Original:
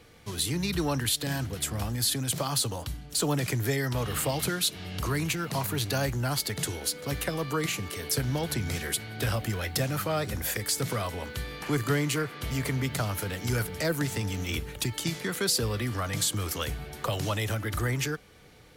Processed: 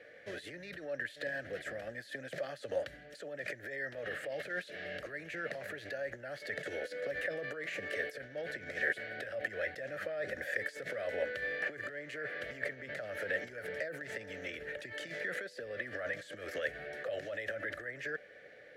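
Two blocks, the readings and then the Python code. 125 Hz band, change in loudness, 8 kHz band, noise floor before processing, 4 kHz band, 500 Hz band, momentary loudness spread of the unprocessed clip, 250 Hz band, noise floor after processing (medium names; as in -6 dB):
-25.5 dB, -10.0 dB, -28.0 dB, -47 dBFS, -18.5 dB, -5.0 dB, 5 LU, -18.0 dB, -55 dBFS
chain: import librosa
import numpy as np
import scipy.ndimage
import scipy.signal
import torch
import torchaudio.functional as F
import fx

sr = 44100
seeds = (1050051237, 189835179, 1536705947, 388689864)

y = fx.over_compress(x, sr, threshold_db=-34.0, ratio=-1.0)
y = fx.double_bandpass(y, sr, hz=1000.0, octaves=1.6)
y = F.gain(torch.from_numpy(y), 7.0).numpy()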